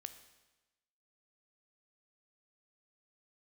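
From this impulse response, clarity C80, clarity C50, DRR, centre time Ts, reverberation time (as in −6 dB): 13.0 dB, 11.5 dB, 9.5 dB, 10 ms, 1.1 s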